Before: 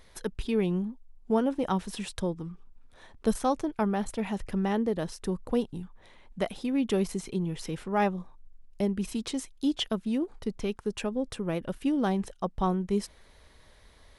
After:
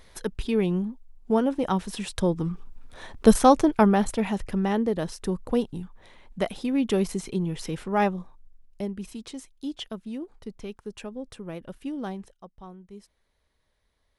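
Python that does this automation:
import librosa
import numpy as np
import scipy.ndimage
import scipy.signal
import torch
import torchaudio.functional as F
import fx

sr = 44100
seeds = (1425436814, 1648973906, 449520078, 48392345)

y = fx.gain(x, sr, db=fx.line((2.05, 3.0), (2.47, 10.5), (3.69, 10.5), (4.49, 3.0), (8.03, 3.0), (9.16, -6.0), (12.08, -6.0), (12.53, -17.0)))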